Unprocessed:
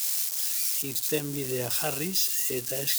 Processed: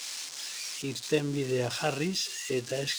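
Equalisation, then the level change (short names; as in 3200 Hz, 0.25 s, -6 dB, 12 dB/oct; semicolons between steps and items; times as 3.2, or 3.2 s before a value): air absorption 110 m; +2.5 dB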